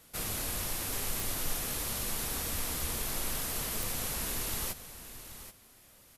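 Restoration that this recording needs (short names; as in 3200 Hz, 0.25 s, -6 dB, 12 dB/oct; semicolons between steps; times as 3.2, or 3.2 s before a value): de-click; inverse comb 0.781 s -12.5 dB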